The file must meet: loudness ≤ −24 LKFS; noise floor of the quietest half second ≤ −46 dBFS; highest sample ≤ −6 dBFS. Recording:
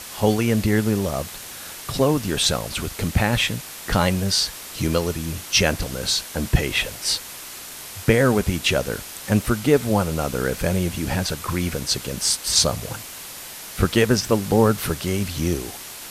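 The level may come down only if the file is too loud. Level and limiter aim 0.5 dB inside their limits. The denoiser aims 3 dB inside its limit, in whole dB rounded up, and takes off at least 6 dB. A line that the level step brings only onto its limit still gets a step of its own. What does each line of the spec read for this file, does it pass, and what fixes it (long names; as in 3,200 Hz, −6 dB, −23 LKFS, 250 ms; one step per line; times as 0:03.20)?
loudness −21.5 LKFS: out of spec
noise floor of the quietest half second −37 dBFS: out of spec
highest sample −2.5 dBFS: out of spec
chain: broadband denoise 9 dB, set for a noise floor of −37 dBFS
level −3 dB
brickwall limiter −6.5 dBFS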